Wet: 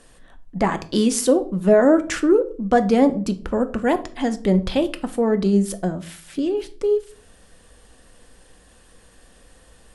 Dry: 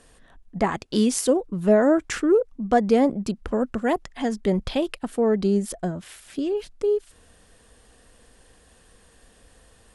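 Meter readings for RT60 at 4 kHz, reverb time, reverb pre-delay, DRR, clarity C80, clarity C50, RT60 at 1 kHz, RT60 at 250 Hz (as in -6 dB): 0.30 s, 0.45 s, 3 ms, 9.0 dB, 21.0 dB, 16.5 dB, 0.35 s, 0.65 s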